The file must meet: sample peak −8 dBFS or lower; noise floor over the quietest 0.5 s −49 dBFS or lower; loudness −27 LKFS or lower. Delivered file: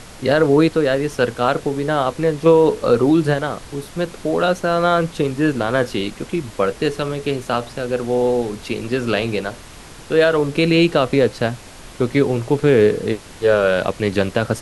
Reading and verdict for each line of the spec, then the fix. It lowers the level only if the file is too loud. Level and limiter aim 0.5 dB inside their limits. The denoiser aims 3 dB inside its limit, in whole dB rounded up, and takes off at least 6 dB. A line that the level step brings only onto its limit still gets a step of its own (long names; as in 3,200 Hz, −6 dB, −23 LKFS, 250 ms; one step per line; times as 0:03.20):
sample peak −3.5 dBFS: out of spec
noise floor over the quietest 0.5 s −39 dBFS: out of spec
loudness −18.5 LKFS: out of spec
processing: broadband denoise 6 dB, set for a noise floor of −39 dBFS
level −9 dB